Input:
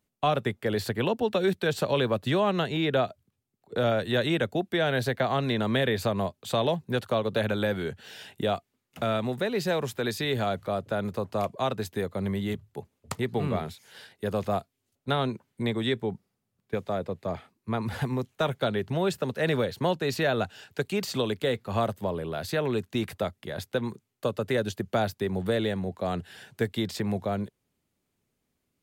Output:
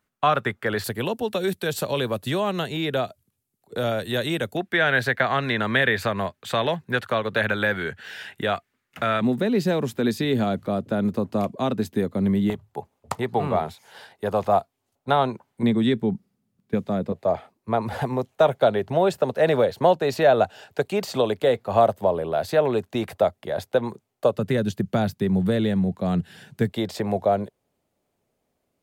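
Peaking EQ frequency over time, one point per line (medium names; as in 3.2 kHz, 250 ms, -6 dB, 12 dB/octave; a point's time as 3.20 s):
peaking EQ +12 dB 1.3 oct
1.4 kHz
from 0.84 s 12 kHz
from 4.57 s 1.7 kHz
from 9.21 s 240 Hz
from 12.50 s 820 Hz
from 15.63 s 210 Hz
from 17.12 s 670 Hz
from 24.36 s 170 Hz
from 26.70 s 640 Hz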